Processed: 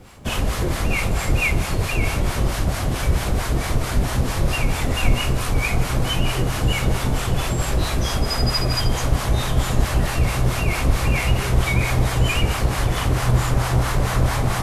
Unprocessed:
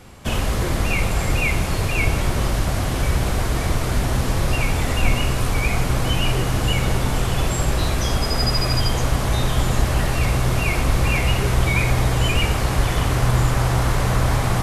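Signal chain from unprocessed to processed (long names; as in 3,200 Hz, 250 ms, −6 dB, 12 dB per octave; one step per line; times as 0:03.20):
two-band tremolo in antiphase 4.5 Hz, depth 70%, crossover 700 Hz
bit reduction 12 bits
level +2.5 dB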